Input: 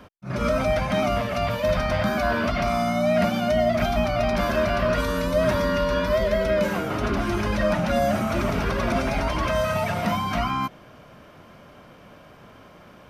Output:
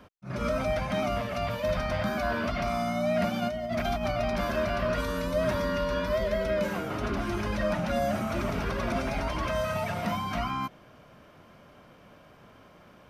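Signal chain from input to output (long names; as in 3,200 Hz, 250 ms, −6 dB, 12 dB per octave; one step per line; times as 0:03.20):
0:03.42–0:04.12: compressor whose output falls as the input rises −23 dBFS, ratio −0.5
level −6 dB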